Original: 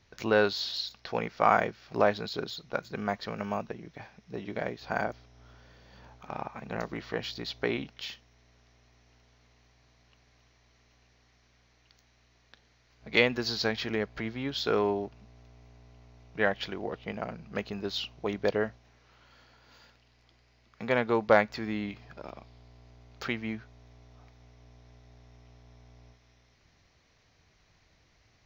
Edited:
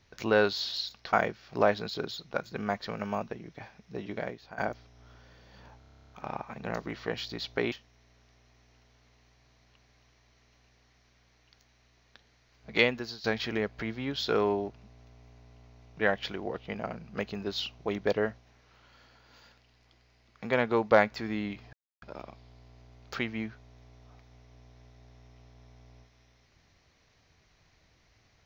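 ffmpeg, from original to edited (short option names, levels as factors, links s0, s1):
-filter_complex "[0:a]asplit=17[s0][s1][s2][s3][s4][s5][s6][s7][s8][s9][s10][s11][s12][s13][s14][s15][s16];[s0]atrim=end=1.132[s17];[s1]atrim=start=1.518:end=4.97,asetpts=PTS-STARTPTS,afade=t=out:st=2.992:d=0.46:silence=0.133352[s18];[s2]atrim=start=4.97:end=6.202,asetpts=PTS-STARTPTS,afade=t=in:d=0.004:c=hsin:silence=0.133352[s19];[s3]atrim=start=6.168:end=6.202[s20];[s4]atrim=start=6.168:end=6.202[s21];[s5]atrim=start=6.168:end=6.202[s22];[s6]atrim=start=6.168:end=6.202[s23];[s7]atrim=start=6.168:end=6.202[s24];[s8]atrim=start=6.168:end=6.202[s25];[s9]atrim=start=6.168:end=6.202[s26];[s10]atrim=start=6.168:end=6.202[s27];[s11]atrim=start=6.168:end=6.202[s28];[s12]atrim=start=6.168:end=6.202[s29];[s13]atrim=start=6.168:end=7.782[s30];[s14]atrim=start=8.098:end=13.62,asetpts=PTS-STARTPTS,afade=t=out:st=5.052:d=0.47:silence=0.11885[s31];[s15]atrim=start=13.62:end=22.11,asetpts=PTS-STARTPTS,afade=t=in:d=0.004:c=hsin:silence=0.11885,afade=t=out:st=8.486:d=0.004:c=hsin,apad=pad_dur=0.29[s32];[s16]atrim=start=22.11,asetpts=PTS-STARTPTS,afade=t=in:d=0.004:c=hsin[s33];[s18][s19]concat=n=2:v=0:a=1[s34];[s17][s34]acrossfade=d=0.004:c1=hsin:c2=hsin[s35];[s35][s20]acrossfade=d=0.004:c1=hsin:c2=hsin[s36];[s36][s21]acrossfade=d=0.004:c1=hsin:c2=hsin[s37];[s37][s22]acrossfade=d=0.004:c1=hsin:c2=hsin[s38];[s38][s23]acrossfade=d=0.004:c1=hsin:c2=hsin[s39];[s39][s24]acrossfade=d=0.004:c1=hsin:c2=hsin[s40];[s40][s25]acrossfade=d=0.004:c1=hsin:c2=hsin[s41];[s41][s26]acrossfade=d=0.004:c1=hsin:c2=hsin[s42];[s42][s27]acrossfade=d=0.004:c1=hsin:c2=hsin[s43];[s43][s28]acrossfade=d=0.004:c1=hsin:c2=hsin[s44];[s44][s29]acrossfade=d=0.004:c1=hsin:c2=hsin[s45];[s45][s30]acrossfade=d=0.004:c1=hsin:c2=hsin[s46];[s31][s32][s33]concat=n=3:v=0:a=1[s47];[s46][s47]acrossfade=d=0.004:c1=hsin:c2=hsin"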